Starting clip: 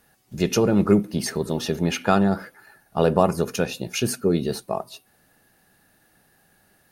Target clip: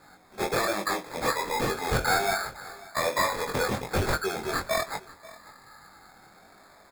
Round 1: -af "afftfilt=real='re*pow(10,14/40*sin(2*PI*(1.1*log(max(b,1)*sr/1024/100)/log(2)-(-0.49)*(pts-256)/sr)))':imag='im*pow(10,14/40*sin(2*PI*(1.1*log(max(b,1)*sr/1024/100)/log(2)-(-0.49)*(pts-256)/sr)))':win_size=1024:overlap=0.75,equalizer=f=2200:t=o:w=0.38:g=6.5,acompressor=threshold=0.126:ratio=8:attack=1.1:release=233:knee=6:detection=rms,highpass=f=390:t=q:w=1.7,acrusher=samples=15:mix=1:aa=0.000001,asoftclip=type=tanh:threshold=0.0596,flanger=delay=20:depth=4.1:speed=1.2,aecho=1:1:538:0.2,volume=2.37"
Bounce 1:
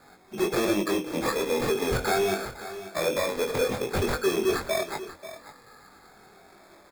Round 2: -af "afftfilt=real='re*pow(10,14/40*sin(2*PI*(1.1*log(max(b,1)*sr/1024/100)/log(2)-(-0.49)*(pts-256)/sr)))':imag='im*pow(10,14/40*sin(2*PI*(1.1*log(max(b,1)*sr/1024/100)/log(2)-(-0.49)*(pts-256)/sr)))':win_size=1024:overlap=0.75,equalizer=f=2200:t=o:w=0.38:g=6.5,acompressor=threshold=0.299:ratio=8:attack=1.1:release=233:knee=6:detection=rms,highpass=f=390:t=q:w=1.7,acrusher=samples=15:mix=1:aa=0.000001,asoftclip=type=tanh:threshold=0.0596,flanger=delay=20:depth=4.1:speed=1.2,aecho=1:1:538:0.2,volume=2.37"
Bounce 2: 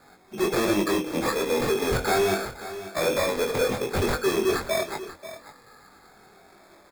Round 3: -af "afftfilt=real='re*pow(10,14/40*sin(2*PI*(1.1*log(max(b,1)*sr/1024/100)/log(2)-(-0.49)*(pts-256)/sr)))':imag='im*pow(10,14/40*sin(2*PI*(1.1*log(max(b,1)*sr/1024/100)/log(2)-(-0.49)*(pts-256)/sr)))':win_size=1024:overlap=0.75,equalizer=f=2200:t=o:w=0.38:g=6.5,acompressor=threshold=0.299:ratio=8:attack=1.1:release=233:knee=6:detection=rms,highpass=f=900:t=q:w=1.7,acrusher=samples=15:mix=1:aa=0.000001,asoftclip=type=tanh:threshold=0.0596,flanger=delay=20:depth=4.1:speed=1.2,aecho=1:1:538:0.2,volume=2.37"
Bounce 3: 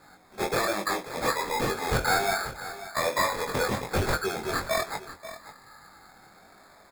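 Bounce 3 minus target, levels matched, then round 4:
echo-to-direct +6.5 dB
-af "afftfilt=real='re*pow(10,14/40*sin(2*PI*(1.1*log(max(b,1)*sr/1024/100)/log(2)-(-0.49)*(pts-256)/sr)))':imag='im*pow(10,14/40*sin(2*PI*(1.1*log(max(b,1)*sr/1024/100)/log(2)-(-0.49)*(pts-256)/sr)))':win_size=1024:overlap=0.75,equalizer=f=2200:t=o:w=0.38:g=6.5,acompressor=threshold=0.299:ratio=8:attack=1.1:release=233:knee=6:detection=rms,highpass=f=900:t=q:w=1.7,acrusher=samples=15:mix=1:aa=0.000001,asoftclip=type=tanh:threshold=0.0596,flanger=delay=20:depth=4.1:speed=1.2,aecho=1:1:538:0.0944,volume=2.37"

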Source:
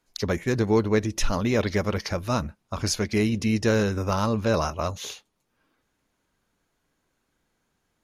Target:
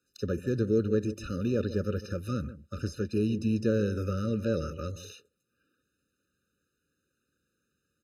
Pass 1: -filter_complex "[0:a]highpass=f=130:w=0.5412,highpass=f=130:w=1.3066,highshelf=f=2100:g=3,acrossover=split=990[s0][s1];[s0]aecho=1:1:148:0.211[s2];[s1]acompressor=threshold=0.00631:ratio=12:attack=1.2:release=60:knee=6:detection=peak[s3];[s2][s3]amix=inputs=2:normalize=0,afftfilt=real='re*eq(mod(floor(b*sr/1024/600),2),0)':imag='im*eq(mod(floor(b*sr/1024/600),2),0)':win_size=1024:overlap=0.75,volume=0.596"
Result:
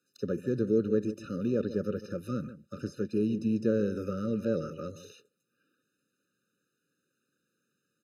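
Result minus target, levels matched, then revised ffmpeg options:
compression: peak gain reduction +7.5 dB; 125 Hz band -5.0 dB
-filter_complex "[0:a]highpass=f=54:w=0.5412,highpass=f=54:w=1.3066,highshelf=f=2100:g=3,acrossover=split=990[s0][s1];[s0]aecho=1:1:148:0.211[s2];[s1]acompressor=threshold=0.0158:ratio=12:attack=1.2:release=60:knee=6:detection=peak[s3];[s2][s3]amix=inputs=2:normalize=0,afftfilt=real='re*eq(mod(floor(b*sr/1024/600),2),0)':imag='im*eq(mod(floor(b*sr/1024/600),2),0)':win_size=1024:overlap=0.75,volume=0.596"

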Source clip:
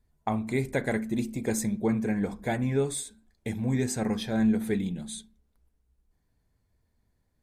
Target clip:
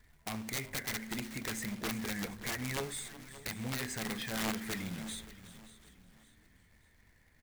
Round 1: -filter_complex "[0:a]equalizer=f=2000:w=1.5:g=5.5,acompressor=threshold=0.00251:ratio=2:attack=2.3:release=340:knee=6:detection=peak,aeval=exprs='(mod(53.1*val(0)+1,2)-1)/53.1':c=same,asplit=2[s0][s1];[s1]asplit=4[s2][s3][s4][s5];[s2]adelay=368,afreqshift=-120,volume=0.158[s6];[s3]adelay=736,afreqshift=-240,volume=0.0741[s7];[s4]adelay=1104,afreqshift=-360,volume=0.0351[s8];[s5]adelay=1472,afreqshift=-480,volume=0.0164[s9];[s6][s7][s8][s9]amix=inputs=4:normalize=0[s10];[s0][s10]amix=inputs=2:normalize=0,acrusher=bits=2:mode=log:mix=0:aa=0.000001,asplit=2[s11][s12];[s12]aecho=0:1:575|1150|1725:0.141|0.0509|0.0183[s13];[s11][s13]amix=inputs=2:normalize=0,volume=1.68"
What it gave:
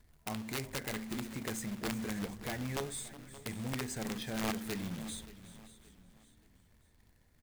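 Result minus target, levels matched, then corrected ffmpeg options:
2 kHz band -3.0 dB
-filter_complex "[0:a]equalizer=f=2000:w=1.5:g=17,acompressor=threshold=0.00251:ratio=2:attack=2.3:release=340:knee=6:detection=peak,aeval=exprs='(mod(53.1*val(0)+1,2)-1)/53.1':c=same,asplit=2[s0][s1];[s1]asplit=4[s2][s3][s4][s5];[s2]adelay=368,afreqshift=-120,volume=0.158[s6];[s3]adelay=736,afreqshift=-240,volume=0.0741[s7];[s4]adelay=1104,afreqshift=-360,volume=0.0351[s8];[s5]adelay=1472,afreqshift=-480,volume=0.0164[s9];[s6][s7][s8][s9]amix=inputs=4:normalize=0[s10];[s0][s10]amix=inputs=2:normalize=0,acrusher=bits=2:mode=log:mix=0:aa=0.000001,asplit=2[s11][s12];[s12]aecho=0:1:575|1150|1725:0.141|0.0509|0.0183[s13];[s11][s13]amix=inputs=2:normalize=0,volume=1.68"

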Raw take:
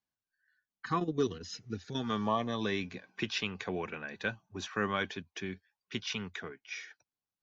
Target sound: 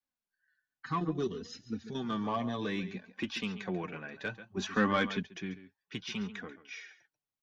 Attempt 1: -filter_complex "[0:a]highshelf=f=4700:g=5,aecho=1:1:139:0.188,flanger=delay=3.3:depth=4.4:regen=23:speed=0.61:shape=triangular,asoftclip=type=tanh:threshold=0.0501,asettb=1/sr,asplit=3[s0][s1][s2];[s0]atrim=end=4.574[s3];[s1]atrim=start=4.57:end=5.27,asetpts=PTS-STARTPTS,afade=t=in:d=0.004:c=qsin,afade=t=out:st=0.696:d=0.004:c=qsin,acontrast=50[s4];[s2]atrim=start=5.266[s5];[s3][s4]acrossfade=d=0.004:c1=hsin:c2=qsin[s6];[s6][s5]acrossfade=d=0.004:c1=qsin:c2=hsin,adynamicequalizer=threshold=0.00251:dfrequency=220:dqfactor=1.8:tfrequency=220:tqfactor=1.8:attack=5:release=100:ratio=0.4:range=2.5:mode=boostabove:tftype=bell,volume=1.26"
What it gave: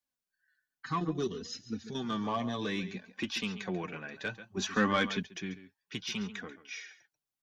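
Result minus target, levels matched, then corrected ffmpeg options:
8 kHz band +6.0 dB
-filter_complex "[0:a]highshelf=f=4700:g=-5.5,aecho=1:1:139:0.188,flanger=delay=3.3:depth=4.4:regen=23:speed=0.61:shape=triangular,asoftclip=type=tanh:threshold=0.0501,asettb=1/sr,asplit=3[s0][s1][s2];[s0]atrim=end=4.574[s3];[s1]atrim=start=4.57:end=5.27,asetpts=PTS-STARTPTS,afade=t=in:d=0.004:c=qsin,afade=t=out:st=0.696:d=0.004:c=qsin,acontrast=50[s4];[s2]atrim=start=5.266[s5];[s3][s4]acrossfade=d=0.004:c1=hsin:c2=qsin[s6];[s6][s5]acrossfade=d=0.004:c1=qsin:c2=hsin,adynamicequalizer=threshold=0.00251:dfrequency=220:dqfactor=1.8:tfrequency=220:tqfactor=1.8:attack=5:release=100:ratio=0.4:range=2.5:mode=boostabove:tftype=bell,volume=1.26"

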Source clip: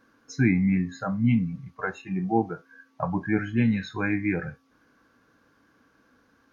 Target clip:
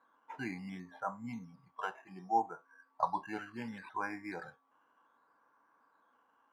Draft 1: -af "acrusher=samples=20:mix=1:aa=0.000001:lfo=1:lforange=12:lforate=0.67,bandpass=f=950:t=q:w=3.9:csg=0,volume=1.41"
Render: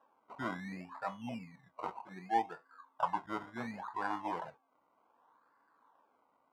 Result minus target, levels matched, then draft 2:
decimation with a swept rate: distortion +6 dB
-af "acrusher=samples=8:mix=1:aa=0.000001:lfo=1:lforange=4.8:lforate=0.67,bandpass=f=950:t=q:w=3.9:csg=0,volume=1.41"

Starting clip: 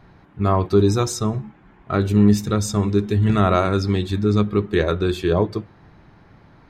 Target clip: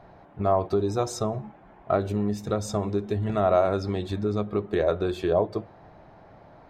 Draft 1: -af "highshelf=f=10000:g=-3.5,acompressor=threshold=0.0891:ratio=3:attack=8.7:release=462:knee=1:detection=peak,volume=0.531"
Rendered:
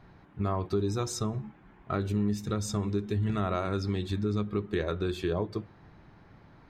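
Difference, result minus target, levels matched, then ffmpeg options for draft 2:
500 Hz band -4.0 dB
-af "highshelf=f=10000:g=-3.5,acompressor=threshold=0.0891:ratio=3:attack=8.7:release=462:knee=1:detection=peak,equalizer=f=650:w=1.4:g=15,volume=0.531"

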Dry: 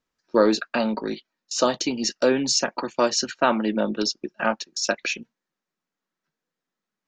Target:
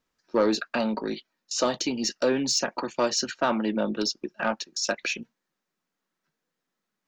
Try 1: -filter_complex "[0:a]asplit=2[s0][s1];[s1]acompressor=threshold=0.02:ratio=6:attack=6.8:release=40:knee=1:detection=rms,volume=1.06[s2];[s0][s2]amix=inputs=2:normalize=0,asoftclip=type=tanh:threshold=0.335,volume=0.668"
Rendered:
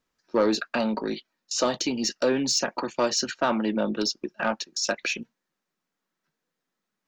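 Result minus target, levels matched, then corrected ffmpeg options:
compression: peak gain reduction -5 dB
-filter_complex "[0:a]asplit=2[s0][s1];[s1]acompressor=threshold=0.01:ratio=6:attack=6.8:release=40:knee=1:detection=rms,volume=1.06[s2];[s0][s2]amix=inputs=2:normalize=0,asoftclip=type=tanh:threshold=0.335,volume=0.668"

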